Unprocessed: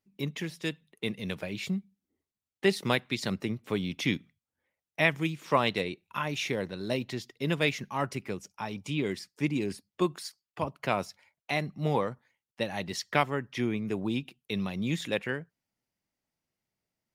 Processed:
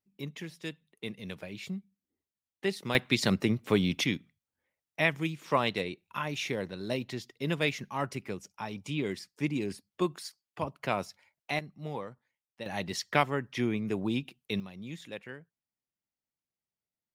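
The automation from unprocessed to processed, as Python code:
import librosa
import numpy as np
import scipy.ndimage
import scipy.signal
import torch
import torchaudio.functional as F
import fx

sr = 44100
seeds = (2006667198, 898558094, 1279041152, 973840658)

y = fx.gain(x, sr, db=fx.steps((0.0, -6.0), (2.95, 5.0), (4.04, -2.0), (11.59, -10.0), (12.66, 0.0), (14.6, -11.5)))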